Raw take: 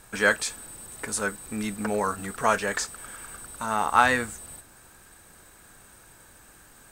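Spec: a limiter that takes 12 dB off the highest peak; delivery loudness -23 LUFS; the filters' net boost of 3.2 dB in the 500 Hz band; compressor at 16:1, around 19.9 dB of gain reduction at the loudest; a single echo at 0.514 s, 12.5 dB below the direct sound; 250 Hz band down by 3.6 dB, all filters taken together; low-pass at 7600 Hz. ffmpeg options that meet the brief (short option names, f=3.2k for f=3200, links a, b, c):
-af "lowpass=7.6k,equalizer=f=250:t=o:g=-5.5,equalizer=f=500:t=o:g=5,acompressor=threshold=-33dB:ratio=16,alimiter=level_in=7.5dB:limit=-24dB:level=0:latency=1,volume=-7.5dB,aecho=1:1:514:0.237,volume=20.5dB"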